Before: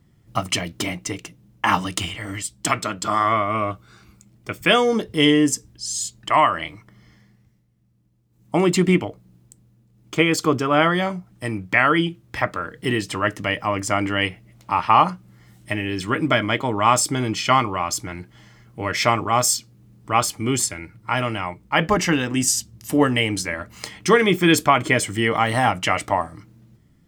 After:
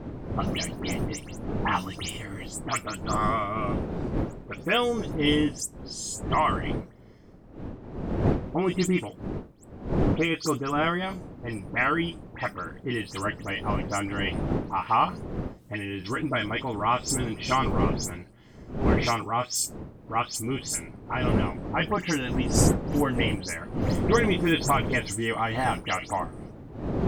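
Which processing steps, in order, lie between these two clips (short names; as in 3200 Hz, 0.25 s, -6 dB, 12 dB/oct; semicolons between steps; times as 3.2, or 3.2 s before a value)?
spectral delay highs late, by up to 0.117 s; wind noise 310 Hz -24 dBFS; gain -7.5 dB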